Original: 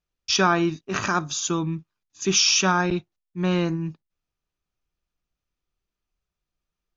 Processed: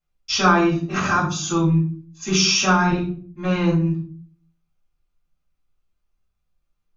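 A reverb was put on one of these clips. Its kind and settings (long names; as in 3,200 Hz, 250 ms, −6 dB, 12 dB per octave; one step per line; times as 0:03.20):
rectangular room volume 370 cubic metres, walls furnished, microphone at 6.9 metres
level −8 dB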